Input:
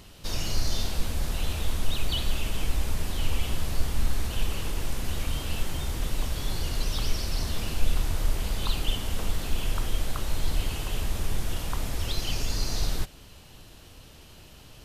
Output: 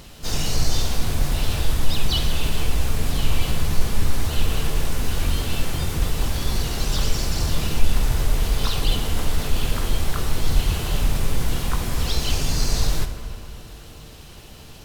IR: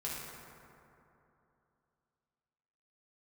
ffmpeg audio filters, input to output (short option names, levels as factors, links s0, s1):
-filter_complex "[0:a]acontrast=33,asplit=2[s0][s1];[s1]asetrate=58866,aresample=44100,atempo=0.749154,volume=0.631[s2];[s0][s2]amix=inputs=2:normalize=0,asplit=2[s3][s4];[1:a]atrim=start_sample=2205[s5];[s4][s5]afir=irnorm=-1:irlink=0,volume=0.531[s6];[s3][s6]amix=inputs=2:normalize=0,volume=0.708"